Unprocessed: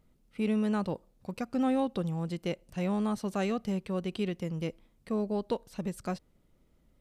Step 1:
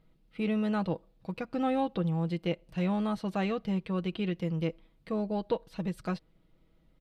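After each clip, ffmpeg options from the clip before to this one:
-filter_complex "[0:a]highshelf=f=5100:t=q:w=1.5:g=-8,aecho=1:1:6.2:0.47,acrossover=split=3400[s0][s1];[s1]alimiter=level_in=9.44:limit=0.0631:level=0:latency=1:release=235,volume=0.106[s2];[s0][s2]amix=inputs=2:normalize=0"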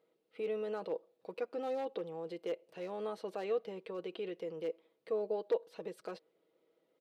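-af "aeval=exprs='0.0891*(abs(mod(val(0)/0.0891+3,4)-2)-1)':c=same,alimiter=level_in=1.33:limit=0.0631:level=0:latency=1:release=17,volume=0.75,highpass=f=440:t=q:w=3.9,volume=0.473"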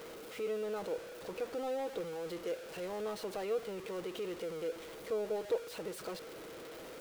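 -af "aeval=exprs='val(0)+0.5*0.01*sgn(val(0))':c=same,volume=0.794"

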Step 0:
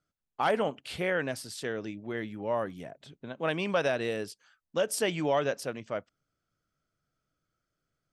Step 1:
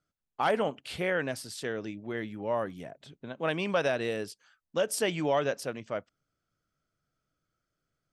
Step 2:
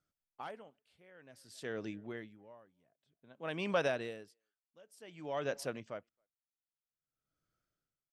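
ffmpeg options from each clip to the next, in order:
-af anull
-filter_complex "[0:a]asplit=2[s0][s1];[s1]adelay=270,highpass=300,lowpass=3400,asoftclip=type=hard:threshold=0.0596,volume=0.0398[s2];[s0][s2]amix=inputs=2:normalize=0,aeval=exprs='val(0)*pow(10,-29*(0.5-0.5*cos(2*PI*0.53*n/s))/20)':c=same,volume=0.631"

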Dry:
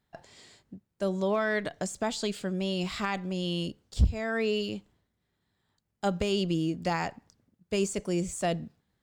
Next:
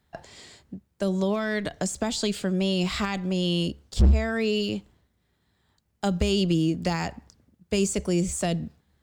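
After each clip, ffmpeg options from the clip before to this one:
-filter_complex "[0:a]equalizer=f=69:w=5.2:g=12.5,acrossover=split=300|3000[s0][s1][s2];[s1]acompressor=threshold=0.02:ratio=6[s3];[s0][s3][s2]amix=inputs=3:normalize=0,volume=10.6,asoftclip=hard,volume=0.0944,volume=2.11"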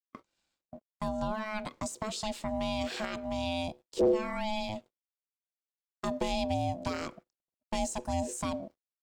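-af "aeval=exprs='sgn(val(0))*max(abs(val(0))-0.00112,0)':c=same,agate=range=0.0708:threshold=0.00794:ratio=16:detection=peak,aeval=exprs='val(0)*sin(2*PI*430*n/s)':c=same,volume=0.562"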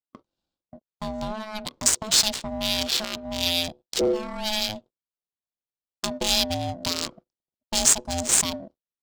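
-af "aexciter=amount=9.7:drive=5.9:freq=3200,adynamicsmooth=sensitivity=2.5:basefreq=940,volume=1.33"

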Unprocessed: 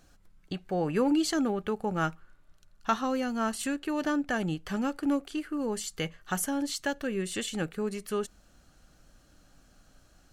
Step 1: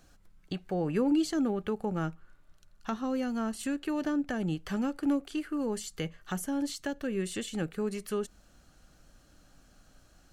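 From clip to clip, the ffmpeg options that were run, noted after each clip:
-filter_complex "[0:a]acrossover=split=490[s0][s1];[s1]acompressor=threshold=0.0112:ratio=3[s2];[s0][s2]amix=inputs=2:normalize=0"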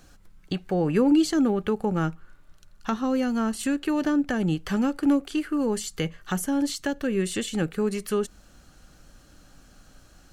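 -af "equalizer=f=660:w=6.4:g=-3.5,volume=2.24"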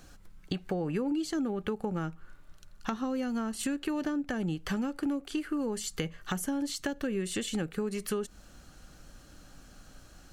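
-af "acompressor=threshold=0.0355:ratio=6"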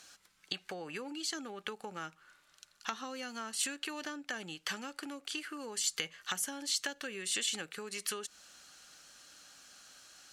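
-af "bandpass=f=5000:t=q:w=0.53:csg=0,volume=1.88"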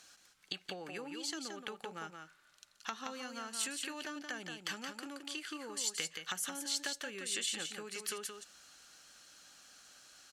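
-af "aecho=1:1:174:0.501,volume=0.708"

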